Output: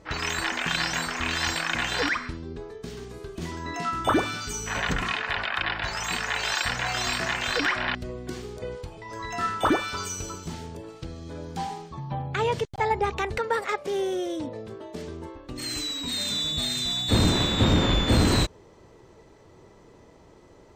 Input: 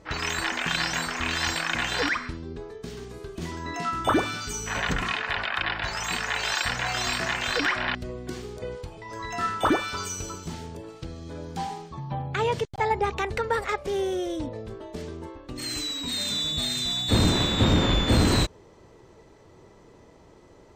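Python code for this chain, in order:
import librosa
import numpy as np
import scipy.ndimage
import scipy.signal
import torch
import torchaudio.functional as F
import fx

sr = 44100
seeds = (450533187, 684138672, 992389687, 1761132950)

y = fx.highpass(x, sr, hz=fx.line((13.38, 210.0), (15.06, 97.0)), slope=12, at=(13.38, 15.06), fade=0.02)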